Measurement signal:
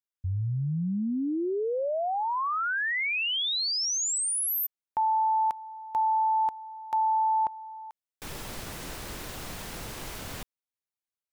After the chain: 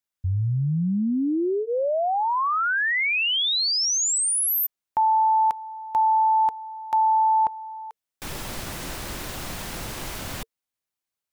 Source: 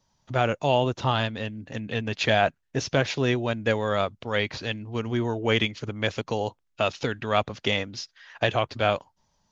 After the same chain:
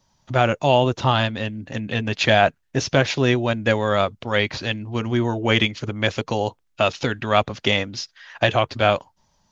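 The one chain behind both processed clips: notch 450 Hz, Q 12; gain +5.5 dB

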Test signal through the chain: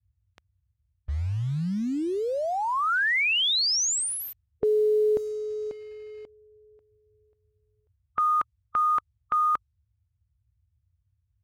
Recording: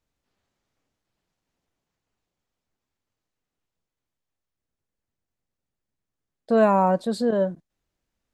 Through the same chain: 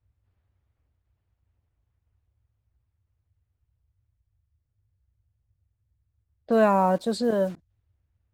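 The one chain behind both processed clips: band noise 51–110 Hz -66 dBFS; in parallel at -4.5 dB: bit-crush 7-bit; on the sum: low-pass opened by the level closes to 2600 Hz, open at -15 dBFS; harmonic-percussive split percussive +4 dB; gain -6 dB

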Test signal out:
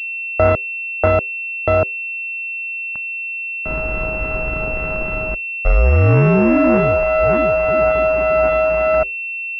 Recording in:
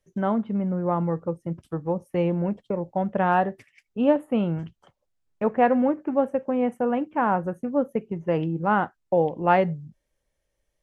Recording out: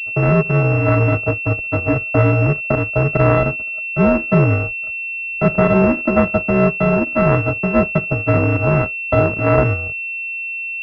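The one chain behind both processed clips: sample sorter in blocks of 64 samples; dynamic EQ 870 Hz, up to -8 dB, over -39 dBFS, Q 2.2; frequency shift -58 Hz; maximiser +11.5 dB; pulse-width modulation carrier 2700 Hz

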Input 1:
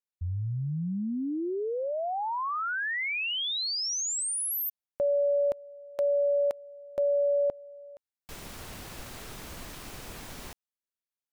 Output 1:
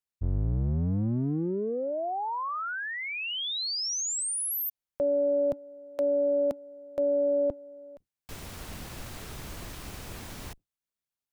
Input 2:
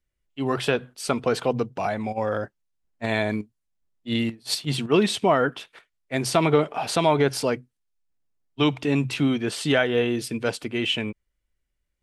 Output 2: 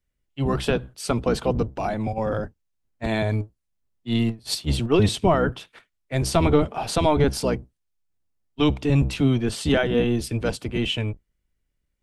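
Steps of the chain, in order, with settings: octaver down 1 oct, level +2 dB; dynamic EQ 2000 Hz, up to -4 dB, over -40 dBFS, Q 1.2

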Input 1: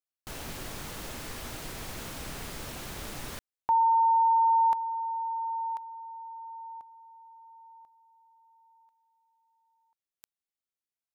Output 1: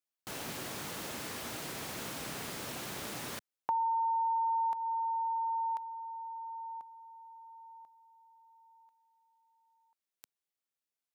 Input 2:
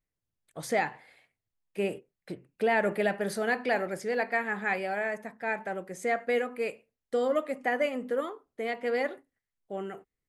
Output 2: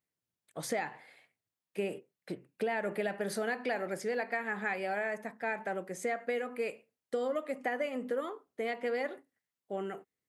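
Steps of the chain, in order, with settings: HPF 140 Hz 12 dB/oct; compressor 6:1, threshold -30 dBFS

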